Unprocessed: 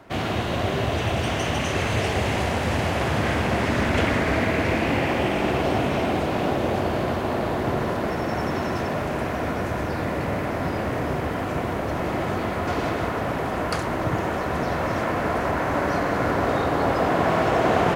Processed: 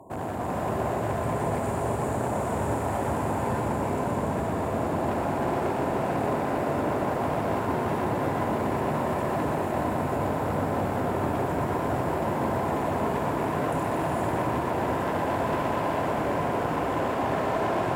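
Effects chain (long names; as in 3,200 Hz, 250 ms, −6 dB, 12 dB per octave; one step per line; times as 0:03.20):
brickwall limiter −19.5 dBFS, peak gain reduction 11.5 dB
linear-phase brick-wall band-stop 1,100–6,800 Hz
parametric band 2,000 Hz +9.5 dB 1.4 octaves
asymmetric clip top −40 dBFS, bottom −22.5 dBFS
high-pass filter 73 Hz
echo with a time of its own for lows and highs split 380 Hz, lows 587 ms, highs 121 ms, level −6 dB
reverb whose tail is shaped and stops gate 490 ms rising, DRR −1.5 dB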